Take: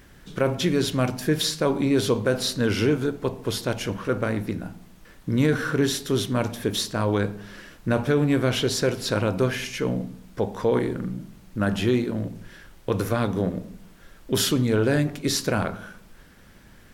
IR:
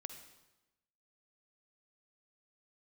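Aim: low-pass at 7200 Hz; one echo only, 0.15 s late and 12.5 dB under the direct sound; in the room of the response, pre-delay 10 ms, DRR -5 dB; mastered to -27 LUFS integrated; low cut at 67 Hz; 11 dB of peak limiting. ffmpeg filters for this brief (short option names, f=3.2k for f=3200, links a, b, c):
-filter_complex "[0:a]highpass=67,lowpass=7.2k,alimiter=limit=-20dB:level=0:latency=1,aecho=1:1:150:0.237,asplit=2[a][b];[1:a]atrim=start_sample=2205,adelay=10[c];[b][c]afir=irnorm=-1:irlink=0,volume=8.5dB[d];[a][d]amix=inputs=2:normalize=0,volume=-3dB"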